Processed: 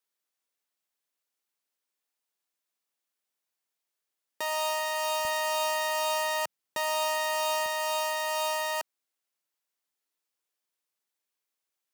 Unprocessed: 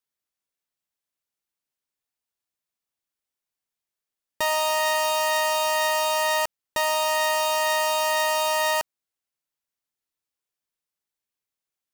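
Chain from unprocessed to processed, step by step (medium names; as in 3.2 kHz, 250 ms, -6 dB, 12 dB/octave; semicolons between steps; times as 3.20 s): high-pass 270 Hz 12 dB/octave, from 5.25 s 130 Hz, from 7.66 s 270 Hz; peak limiter -22.5 dBFS, peak gain reduction 10.5 dB; trim +2 dB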